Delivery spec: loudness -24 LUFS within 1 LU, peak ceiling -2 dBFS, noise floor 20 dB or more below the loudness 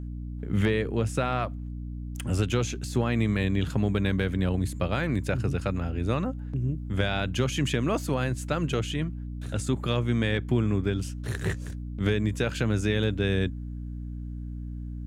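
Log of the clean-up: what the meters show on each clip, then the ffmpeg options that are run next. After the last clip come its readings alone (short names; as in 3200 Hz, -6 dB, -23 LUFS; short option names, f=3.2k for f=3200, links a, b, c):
hum 60 Hz; harmonics up to 300 Hz; hum level -33 dBFS; loudness -28.5 LUFS; peak -12.0 dBFS; loudness target -24.0 LUFS
-> -af "bandreject=f=60:t=h:w=6,bandreject=f=120:t=h:w=6,bandreject=f=180:t=h:w=6,bandreject=f=240:t=h:w=6,bandreject=f=300:t=h:w=6"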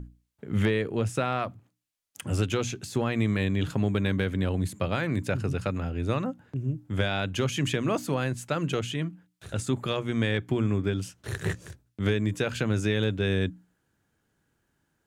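hum none; loudness -28.5 LUFS; peak -12.0 dBFS; loudness target -24.0 LUFS
-> -af "volume=4.5dB"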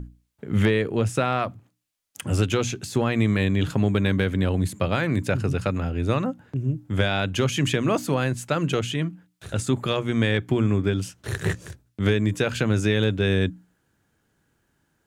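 loudness -24.0 LUFS; peak -7.5 dBFS; noise floor -71 dBFS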